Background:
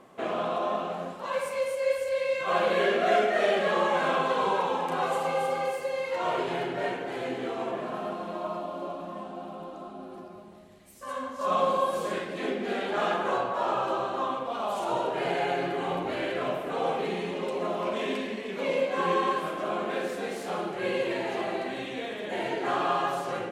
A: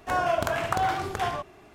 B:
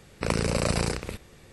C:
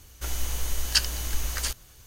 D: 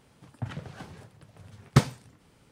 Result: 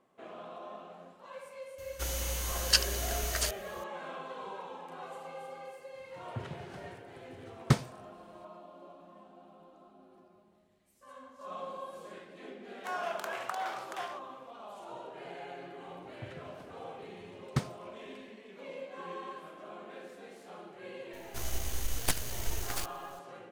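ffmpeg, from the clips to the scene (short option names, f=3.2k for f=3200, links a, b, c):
-filter_complex "[3:a]asplit=2[a][b];[4:a]asplit=2[c][d];[0:a]volume=-16.5dB[e];[a]highpass=51[f];[1:a]highpass=720[g];[b]aeval=exprs='abs(val(0))':c=same[h];[f]atrim=end=2.06,asetpts=PTS-STARTPTS,volume=-2dB,afade=t=in:d=0.004:c=hsin,afade=t=out:st=2.056:d=0.004:c=hsin,adelay=1780[i];[c]atrim=end=2.51,asetpts=PTS-STARTPTS,volume=-5.5dB,afade=t=in:d=0.004:c=hsin,afade=t=out:st=2.506:d=0.004:c=hsin,adelay=5940[j];[g]atrim=end=1.74,asetpts=PTS-STARTPTS,volume=-9dB,afade=t=in:d=0.004:c=hsin,afade=t=out:st=1.736:d=0.004:c=hsin,adelay=12770[k];[d]atrim=end=2.51,asetpts=PTS-STARTPTS,volume=-11.5dB,afade=t=in:d=0.004:c=hsin,afade=t=out:st=2.506:d=0.004:c=hsin,adelay=15800[l];[h]atrim=end=2.06,asetpts=PTS-STARTPTS,volume=-5dB,afade=t=in:d=0.004:c=hsin,afade=t=out:st=2.056:d=0.004:c=hsin,adelay=21130[m];[e][i][j][k][l][m]amix=inputs=6:normalize=0"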